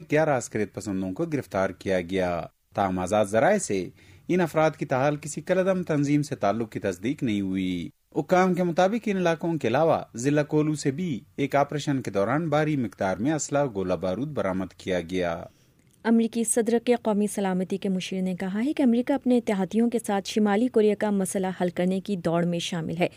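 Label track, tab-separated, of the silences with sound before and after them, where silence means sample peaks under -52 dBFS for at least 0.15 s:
2.490000	2.720000	silence
7.910000	8.120000	silence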